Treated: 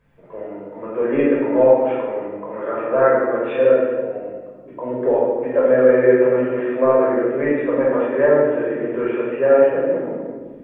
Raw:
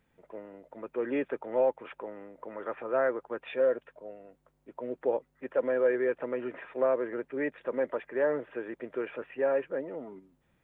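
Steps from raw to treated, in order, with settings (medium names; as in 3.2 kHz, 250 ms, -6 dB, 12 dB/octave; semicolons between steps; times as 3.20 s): treble shelf 2.8 kHz -9.5 dB; reverberation RT60 1.5 s, pre-delay 14 ms, DRR -6.5 dB; trim +4.5 dB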